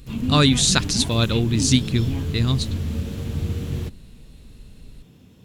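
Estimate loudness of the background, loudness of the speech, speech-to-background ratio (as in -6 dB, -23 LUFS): -27.5 LUFS, -20.0 LUFS, 7.5 dB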